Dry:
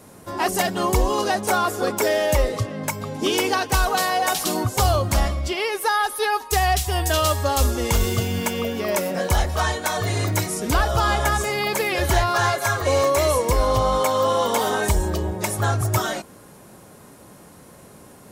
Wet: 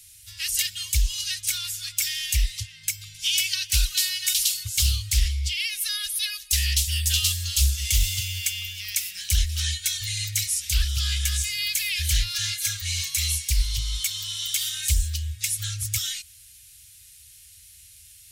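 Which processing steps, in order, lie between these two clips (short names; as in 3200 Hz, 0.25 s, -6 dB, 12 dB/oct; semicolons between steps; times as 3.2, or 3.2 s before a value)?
inverse Chebyshev band-stop 250–830 Hz, stop band 70 dB; low shelf 95 Hz -6 dB; Doppler distortion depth 0.29 ms; gain +4.5 dB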